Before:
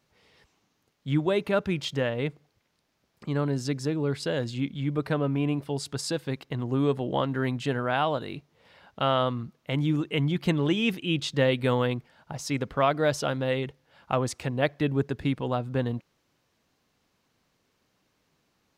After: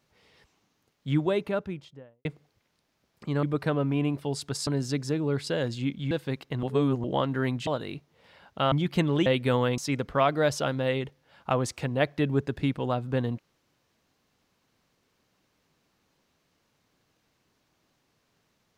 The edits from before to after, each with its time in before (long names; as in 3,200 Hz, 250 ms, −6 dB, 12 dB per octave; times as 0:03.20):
0:01.09–0:02.25: fade out and dull
0:04.87–0:06.11: move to 0:03.43
0:06.63–0:07.04: reverse
0:07.67–0:08.08: remove
0:09.13–0:10.22: remove
0:10.76–0:11.44: remove
0:11.96–0:12.40: remove